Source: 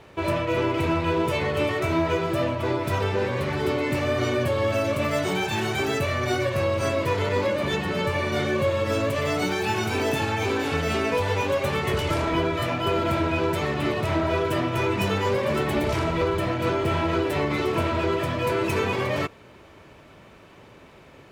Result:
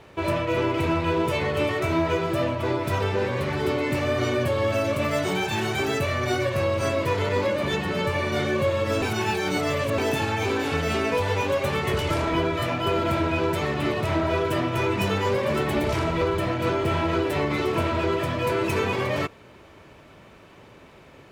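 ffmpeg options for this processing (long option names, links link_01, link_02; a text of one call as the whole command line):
ffmpeg -i in.wav -filter_complex "[0:a]asplit=3[link_01][link_02][link_03];[link_01]atrim=end=9.022[link_04];[link_02]atrim=start=9.018:end=9.982,asetpts=PTS-STARTPTS,areverse[link_05];[link_03]atrim=start=9.978[link_06];[link_04][link_05]acrossfade=duration=0.004:curve1=hsin:curve2=hsin[link_07];[link_07][link_06]acrossfade=duration=0.004:curve1=hsin:curve2=hsin" out.wav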